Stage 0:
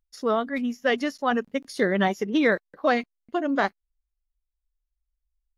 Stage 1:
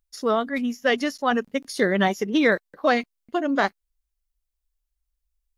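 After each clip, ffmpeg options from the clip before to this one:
ffmpeg -i in.wav -af "highshelf=frequency=4300:gain=6,volume=1.5dB" out.wav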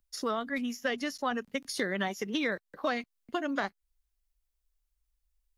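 ffmpeg -i in.wav -filter_complex "[0:a]acrossover=split=180|1000[link_01][link_02][link_03];[link_01]acompressor=threshold=-46dB:ratio=4[link_04];[link_02]acompressor=threshold=-35dB:ratio=4[link_05];[link_03]acompressor=threshold=-34dB:ratio=4[link_06];[link_04][link_05][link_06]amix=inputs=3:normalize=0" out.wav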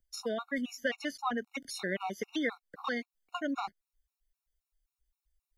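ffmpeg -i in.wav -af "afftfilt=real='re*gt(sin(2*PI*3.8*pts/sr)*(1-2*mod(floor(b*sr/1024/730),2)),0)':imag='im*gt(sin(2*PI*3.8*pts/sr)*(1-2*mod(floor(b*sr/1024/730),2)),0)':win_size=1024:overlap=0.75" out.wav

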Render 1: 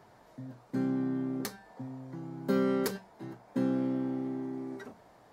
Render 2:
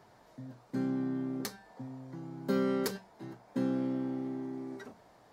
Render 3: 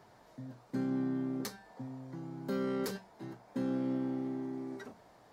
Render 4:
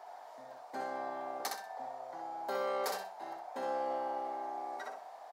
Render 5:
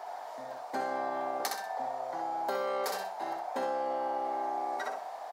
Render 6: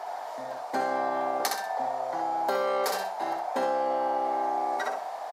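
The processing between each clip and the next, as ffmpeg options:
ffmpeg -i in.wav -af "equalizer=frequency=4900:width_type=o:width=1.4:gain=3,volume=-2dB" out.wav
ffmpeg -i in.wav -af "alimiter=level_in=2.5dB:limit=-24dB:level=0:latency=1:release=16,volume=-2.5dB" out.wav
ffmpeg -i in.wav -af "highpass=frequency=730:width_type=q:width=4.6,aecho=1:1:63|126|189|252:0.631|0.17|0.046|0.0124,volume=1.5dB" out.wav
ffmpeg -i in.wav -af "acompressor=threshold=-38dB:ratio=6,volume=8.5dB" out.wav
ffmpeg -i in.wav -af "aresample=32000,aresample=44100,volume=5.5dB" out.wav

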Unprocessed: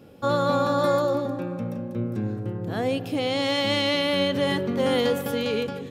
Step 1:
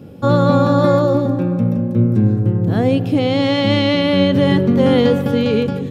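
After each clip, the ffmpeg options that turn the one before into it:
ffmpeg -i in.wav -filter_complex "[0:a]equalizer=frequency=130:width=0.41:gain=12,acrossover=split=5400[link_01][link_02];[link_02]acompressor=threshold=-52dB:ratio=4:attack=1:release=60[link_03];[link_01][link_03]amix=inputs=2:normalize=0,volume=4dB" out.wav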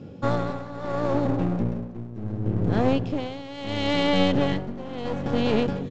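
ffmpeg -i in.wav -af "aresample=16000,aeval=exprs='clip(val(0),-1,0.0596)':channel_layout=same,aresample=44100,tremolo=f=0.72:d=0.86,volume=-3.5dB" out.wav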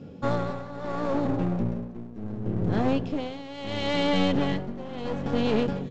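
ffmpeg -i in.wav -filter_complex "[0:a]asplit=2[link_01][link_02];[link_02]acontrast=85,volume=-2dB[link_03];[link_01][link_03]amix=inputs=2:normalize=0,flanger=delay=4.2:depth=1.2:regen=-67:speed=0.93:shape=triangular,volume=-6.5dB" out.wav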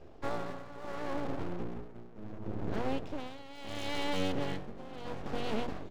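ffmpeg -i in.wav -af "aeval=exprs='abs(val(0))':channel_layout=same,bandreject=frequency=60:width_type=h:width=6,bandreject=frequency=120:width_type=h:width=6,bandreject=frequency=180:width_type=h:width=6,bandreject=frequency=240:width_type=h:width=6,volume=-7.5dB" out.wav

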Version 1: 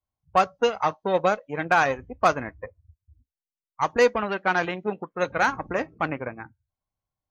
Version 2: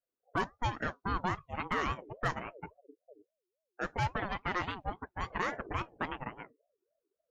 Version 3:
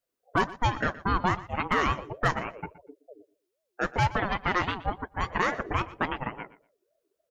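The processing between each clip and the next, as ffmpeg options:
ffmpeg -i in.wav -af "alimiter=limit=-15dB:level=0:latency=1:release=32,asubboost=boost=9.5:cutoff=51,aeval=exprs='val(0)*sin(2*PI*500*n/s+500*0.3/3.6*sin(2*PI*3.6*n/s))':channel_layout=same,volume=-5dB" out.wav
ffmpeg -i in.wav -af "aecho=1:1:120|240:0.126|0.0201,volume=7.5dB" out.wav

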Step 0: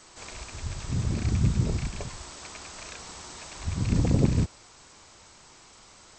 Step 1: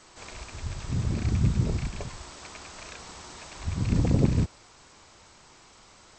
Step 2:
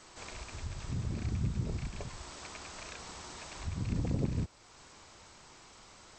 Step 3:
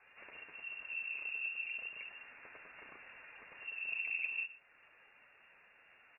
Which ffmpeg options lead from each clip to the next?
ffmpeg -i in.wav -af "highshelf=frequency=7000:gain=-7.5" out.wav
ffmpeg -i in.wav -af "acompressor=threshold=-42dB:ratio=1.5,volume=-1.5dB" out.wav
ffmpeg -i in.wav -af "flanger=delay=2.5:depth=9:regen=64:speed=0.59:shape=sinusoidal,aecho=1:1:120:0.133,lowpass=frequency=2400:width_type=q:width=0.5098,lowpass=frequency=2400:width_type=q:width=0.6013,lowpass=frequency=2400:width_type=q:width=0.9,lowpass=frequency=2400:width_type=q:width=2.563,afreqshift=-2800,volume=-2.5dB" out.wav

